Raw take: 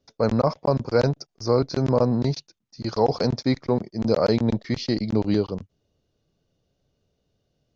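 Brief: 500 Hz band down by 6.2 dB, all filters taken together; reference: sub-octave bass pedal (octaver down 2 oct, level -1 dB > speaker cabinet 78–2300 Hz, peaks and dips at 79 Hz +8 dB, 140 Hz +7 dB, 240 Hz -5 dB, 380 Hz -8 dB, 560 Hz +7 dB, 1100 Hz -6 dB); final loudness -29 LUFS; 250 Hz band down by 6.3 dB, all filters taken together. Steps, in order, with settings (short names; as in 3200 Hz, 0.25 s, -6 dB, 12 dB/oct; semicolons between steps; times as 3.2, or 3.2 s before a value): bell 250 Hz -3.5 dB; bell 500 Hz -8.5 dB; octaver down 2 oct, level -1 dB; speaker cabinet 78–2300 Hz, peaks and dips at 79 Hz +8 dB, 140 Hz +7 dB, 240 Hz -5 dB, 380 Hz -8 dB, 560 Hz +7 dB, 1100 Hz -6 dB; gain -3.5 dB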